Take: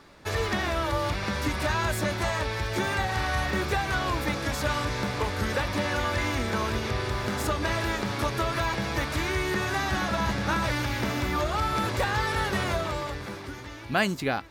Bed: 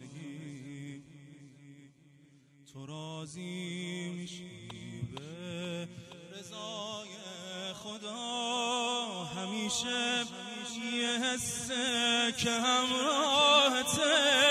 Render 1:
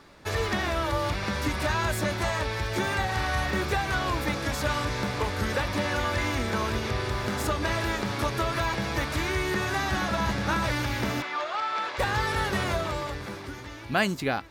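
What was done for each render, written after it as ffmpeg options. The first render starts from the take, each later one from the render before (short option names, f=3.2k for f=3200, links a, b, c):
-filter_complex "[0:a]asplit=3[a][b][c];[a]afade=t=out:st=11.21:d=0.02[d];[b]highpass=680,lowpass=4.1k,afade=t=in:st=11.21:d=0.02,afade=t=out:st=11.98:d=0.02[e];[c]afade=t=in:st=11.98:d=0.02[f];[d][e][f]amix=inputs=3:normalize=0"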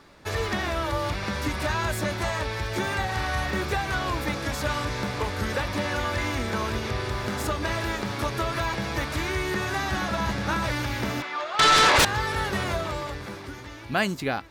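-filter_complex "[0:a]asettb=1/sr,asplit=3[a][b][c];[a]atrim=end=6.024[d];[b]atrim=start=6.02:end=6.5,asetpts=PTS-STARTPTS,afade=t=in:d=0.004:c=qsin,afade=t=out:st=0.476:d=0.004:c=qsin,asoftclip=type=hard:threshold=-19dB[e];[c]atrim=start=6.496[f];[d][e]acrossfade=d=0.004:c1=hsin:c2=qsin[g];[g][f]acrossfade=d=0.004:c1=qsin:c2=hsin,asettb=1/sr,asplit=3[h][i][j];[h]atrim=end=7.474[k];[i]atrim=start=7.47:end=8.3,asetpts=PTS-STARTPTS,afade=t=in:d=0.004:c=qsin,afade=t=out:st=0.826:d=0.004:c=qsin,aeval=exprs='sgn(val(0))*max(abs(val(0))-0.00188,0)':c=same[l];[j]atrim=start=8.296[m];[k][l]acrossfade=d=0.004:c1=hsin:c2=qsin[n];[n][m]acrossfade=d=0.004:c1=qsin:c2=hsin,asettb=1/sr,asplit=3[o][p][q];[o]atrim=end=11.594[r];[p]atrim=start=11.59:end=12.05,asetpts=PTS-STARTPTS,afade=t=in:d=0.004:c=qsin,afade=t=out:st=0.456:d=0.004:c=qsin,aeval=exprs='0.2*sin(PI/2*6.31*val(0)/0.2)':c=same[s];[q]atrim=start=12.046[t];[r][s]acrossfade=d=0.004:c1=hsin:c2=qsin[u];[u][t]acrossfade=d=0.004:c1=qsin:c2=hsin"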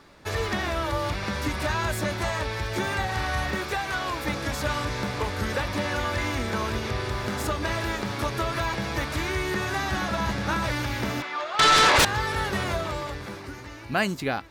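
-filter_complex "[0:a]asettb=1/sr,asplit=3[a][b][c];[a]atrim=end=3.554[d];[b]atrim=start=3.55:end=4.25,asetpts=PTS-STARTPTS,afade=t=in:d=0.004:c=qsin,afade=t=out:st=0.696:d=0.004:c=qsin,lowshelf=f=260:g=-9[e];[c]atrim=start=4.246[f];[d][e]acrossfade=d=0.004:c1=hsin:c2=qsin[g];[g][f]acrossfade=d=0.004:c1=qsin:c2=hsin,asettb=1/sr,asplit=3[h][i][j];[h]atrim=end=13.404[k];[i]atrim=start=13.4:end=14.08,asetpts=PTS-STARTPTS,afade=t=in:d=0.004:c=qsin,afade=t=out:st=0.676:d=0.004:c=qsin,bandreject=f=3.4k:w=8.5[l];[j]atrim=start=14.076[m];[k][l]acrossfade=d=0.004:c1=hsin:c2=qsin[n];[n][m]acrossfade=d=0.004:c1=qsin:c2=hsin"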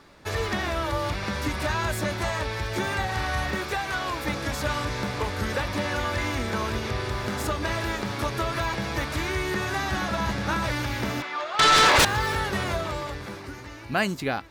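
-filter_complex "[0:a]asettb=1/sr,asplit=3[a][b][c];[a]atrim=end=11.734[d];[b]atrim=start=11.73:end=12.37,asetpts=PTS-STARTPTS,afade=t=in:d=0.004:c=qsin,afade=t=out:st=0.636:d=0.004:c=qsin,aeval=exprs='val(0)+0.5*0.02*sgn(val(0))':c=same[e];[c]atrim=start=12.366[f];[d][e]acrossfade=d=0.004:c1=hsin:c2=qsin[g];[g][f]acrossfade=d=0.004:c1=qsin:c2=hsin"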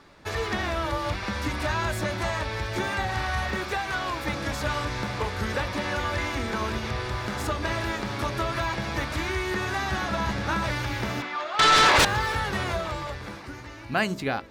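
-af "highshelf=f=8.5k:g=-6.5,bandreject=f=49.23:t=h:w=4,bandreject=f=98.46:t=h:w=4,bandreject=f=147.69:t=h:w=4,bandreject=f=196.92:t=h:w=4,bandreject=f=246.15:t=h:w=4,bandreject=f=295.38:t=h:w=4,bandreject=f=344.61:t=h:w=4,bandreject=f=393.84:t=h:w=4,bandreject=f=443.07:t=h:w=4,bandreject=f=492.3:t=h:w=4,bandreject=f=541.53:t=h:w=4,bandreject=f=590.76:t=h:w=4,bandreject=f=639.99:t=h:w=4"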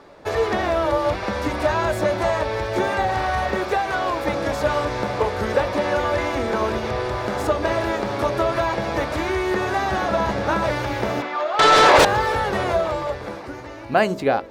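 -af "equalizer=f=550:w=0.77:g=12.5"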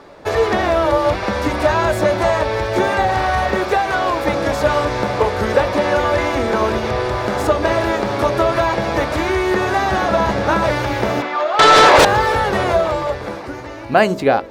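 -af "volume=5dB,alimiter=limit=-1dB:level=0:latency=1"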